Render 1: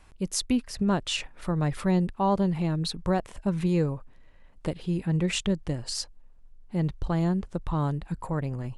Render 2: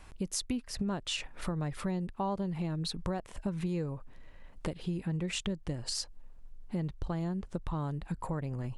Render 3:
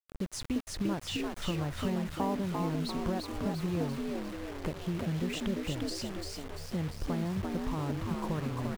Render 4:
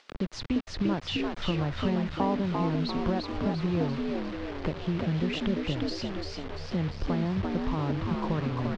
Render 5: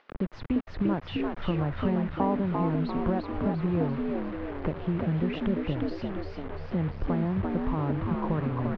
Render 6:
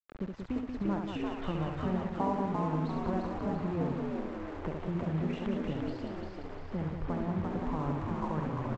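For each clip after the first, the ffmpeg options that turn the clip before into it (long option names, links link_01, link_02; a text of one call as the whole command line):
ffmpeg -i in.wav -af "acompressor=threshold=-36dB:ratio=4,volume=3dB" out.wav
ffmpeg -i in.wav -filter_complex "[0:a]asplit=2[link_01][link_02];[link_02]asplit=6[link_03][link_04][link_05][link_06][link_07][link_08];[link_03]adelay=345,afreqshift=70,volume=-3.5dB[link_09];[link_04]adelay=690,afreqshift=140,volume=-9.9dB[link_10];[link_05]adelay=1035,afreqshift=210,volume=-16.3dB[link_11];[link_06]adelay=1380,afreqshift=280,volume=-22.6dB[link_12];[link_07]adelay=1725,afreqshift=350,volume=-29dB[link_13];[link_08]adelay=2070,afreqshift=420,volume=-35.4dB[link_14];[link_09][link_10][link_11][link_12][link_13][link_14]amix=inputs=6:normalize=0[link_15];[link_01][link_15]amix=inputs=2:normalize=0,acrusher=bits=6:mix=0:aa=0.000001,highshelf=frequency=4500:gain=-9" out.wav
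ffmpeg -i in.wav -filter_complex "[0:a]lowpass=frequency=4900:width=0.5412,lowpass=frequency=4900:width=1.3066,acrossover=split=180[link_01][link_02];[link_02]acompressor=mode=upward:threshold=-41dB:ratio=2.5[link_03];[link_01][link_03]amix=inputs=2:normalize=0,volume=4.5dB" out.wav
ffmpeg -i in.wav -af "lowpass=1900,volume=1dB" out.wav
ffmpeg -i in.wav -af "adynamicequalizer=threshold=0.00631:dfrequency=900:dqfactor=1.4:tfrequency=900:tqfactor=1.4:attack=5:release=100:ratio=0.375:range=2:mode=boostabove:tftype=bell,aresample=16000,aeval=exprs='sgn(val(0))*max(abs(val(0))-0.00447,0)':channel_layout=same,aresample=44100,aecho=1:1:69.97|183.7:0.562|0.501,volume=-7dB" out.wav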